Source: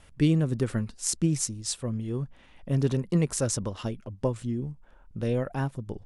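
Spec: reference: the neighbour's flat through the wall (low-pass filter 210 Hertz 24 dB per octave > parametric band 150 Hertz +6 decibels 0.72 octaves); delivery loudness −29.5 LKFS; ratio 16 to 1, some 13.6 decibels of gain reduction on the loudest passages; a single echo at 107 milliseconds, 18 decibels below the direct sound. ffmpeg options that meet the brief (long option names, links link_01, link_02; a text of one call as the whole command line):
ffmpeg -i in.wav -af "acompressor=threshold=-31dB:ratio=16,lowpass=frequency=210:width=0.5412,lowpass=frequency=210:width=1.3066,equalizer=frequency=150:width_type=o:width=0.72:gain=6,aecho=1:1:107:0.126,volume=7dB" out.wav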